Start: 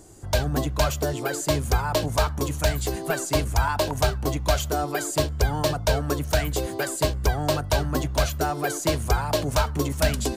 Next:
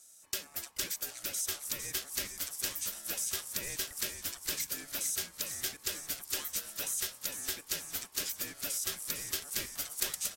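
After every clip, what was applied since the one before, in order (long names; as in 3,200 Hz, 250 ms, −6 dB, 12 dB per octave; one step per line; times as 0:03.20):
first difference
ring modulation 1,000 Hz
echo with shifted repeats 455 ms, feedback 59%, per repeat −94 Hz, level −7 dB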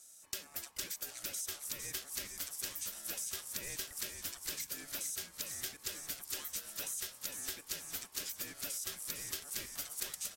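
downward compressor 2.5 to 1, threshold −39 dBFS, peak gain reduction 8.5 dB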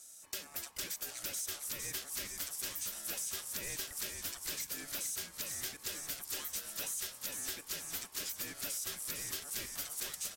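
soft clipping −34.5 dBFS, distortion −12 dB
level +3.5 dB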